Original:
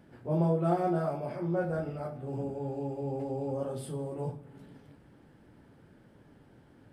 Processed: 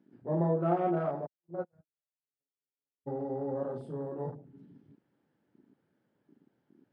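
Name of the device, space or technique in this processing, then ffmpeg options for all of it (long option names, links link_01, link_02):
over-cleaned archive recording: -filter_complex "[0:a]asplit=3[link_01][link_02][link_03];[link_01]afade=type=out:start_time=1.25:duration=0.02[link_04];[link_02]agate=range=-57dB:threshold=-27dB:ratio=16:detection=peak,afade=type=in:start_time=1.25:duration=0.02,afade=type=out:start_time=3.06:duration=0.02[link_05];[link_03]afade=type=in:start_time=3.06:duration=0.02[link_06];[link_04][link_05][link_06]amix=inputs=3:normalize=0,highpass=160,lowpass=6000,afwtdn=0.00631"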